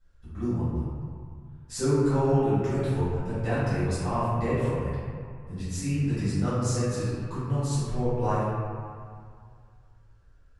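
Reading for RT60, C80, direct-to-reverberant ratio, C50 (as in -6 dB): 2.1 s, -0.5 dB, -13.5 dB, -3.5 dB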